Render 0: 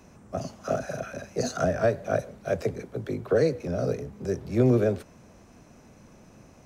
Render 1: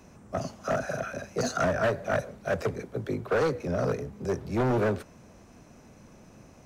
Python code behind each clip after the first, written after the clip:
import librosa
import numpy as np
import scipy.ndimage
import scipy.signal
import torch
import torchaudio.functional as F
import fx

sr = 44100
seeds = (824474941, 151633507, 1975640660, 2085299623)

y = np.clip(x, -10.0 ** (-22.5 / 20.0), 10.0 ** (-22.5 / 20.0))
y = fx.dynamic_eq(y, sr, hz=1300.0, q=1.0, threshold_db=-42.0, ratio=4.0, max_db=5)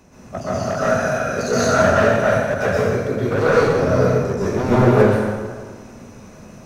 y = fx.rev_plate(x, sr, seeds[0], rt60_s=1.6, hf_ratio=0.75, predelay_ms=110, drr_db=-9.5)
y = y * 10.0 ** (2.0 / 20.0)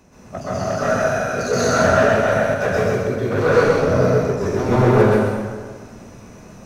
y = x + 10.0 ** (-3.5 / 20.0) * np.pad(x, (int(129 * sr / 1000.0), 0))[:len(x)]
y = y * 10.0 ** (-1.5 / 20.0)